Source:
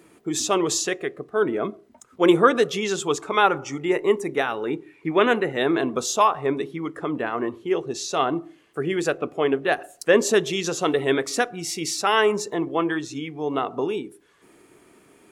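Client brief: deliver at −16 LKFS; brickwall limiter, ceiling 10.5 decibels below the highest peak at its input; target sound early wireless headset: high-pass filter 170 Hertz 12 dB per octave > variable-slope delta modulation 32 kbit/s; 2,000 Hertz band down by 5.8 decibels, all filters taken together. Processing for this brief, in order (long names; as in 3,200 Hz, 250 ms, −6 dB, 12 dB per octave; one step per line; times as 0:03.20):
parametric band 2,000 Hz −8 dB
brickwall limiter −14.5 dBFS
high-pass filter 170 Hz 12 dB per octave
variable-slope delta modulation 32 kbit/s
level +11.5 dB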